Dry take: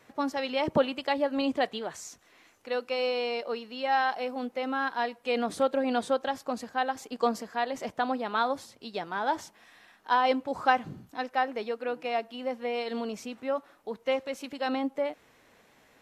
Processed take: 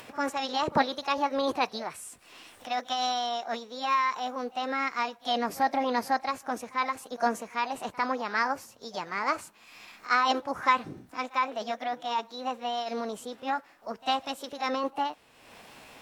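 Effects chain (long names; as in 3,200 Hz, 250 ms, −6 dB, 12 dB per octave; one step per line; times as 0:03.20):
echo ahead of the sound 51 ms −23 dB
formants moved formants +5 semitones
upward compression, threshold −39 dBFS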